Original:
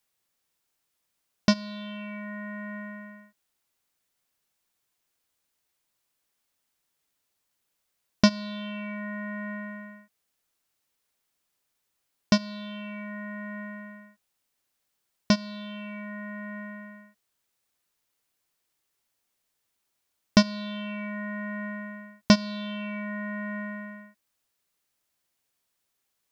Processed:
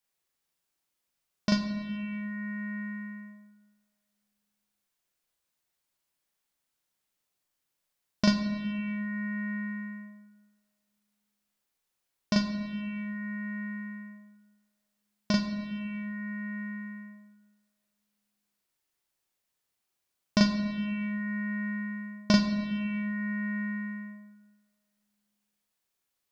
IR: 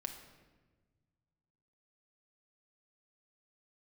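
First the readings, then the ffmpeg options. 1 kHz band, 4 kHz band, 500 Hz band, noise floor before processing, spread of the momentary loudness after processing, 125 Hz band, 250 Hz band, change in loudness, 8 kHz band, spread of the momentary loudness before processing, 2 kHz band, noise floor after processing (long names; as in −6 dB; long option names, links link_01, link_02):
−5.0 dB, −4.0 dB, −6.0 dB, −79 dBFS, 15 LU, −0.5 dB, −0.5 dB, −1.5 dB, can't be measured, 18 LU, −1.5 dB, −83 dBFS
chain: -filter_complex "[0:a]asplit=2[link_01][link_02];[1:a]atrim=start_sample=2205,adelay=39[link_03];[link_02][link_03]afir=irnorm=-1:irlink=0,volume=3dB[link_04];[link_01][link_04]amix=inputs=2:normalize=0,volume=-7.5dB"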